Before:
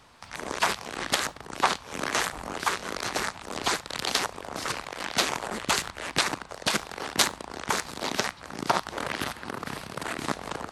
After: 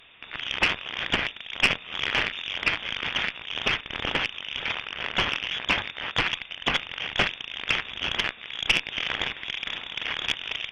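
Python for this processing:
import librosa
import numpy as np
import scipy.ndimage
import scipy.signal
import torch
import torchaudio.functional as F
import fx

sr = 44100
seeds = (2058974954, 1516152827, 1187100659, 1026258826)

y = fx.freq_invert(x, sr, carrier_hz=3600)
y = fx.tube_stage(y, sr, drive_db=14.0, bias=0.5)
y = y * librosa.db_to_amplitude(5.0)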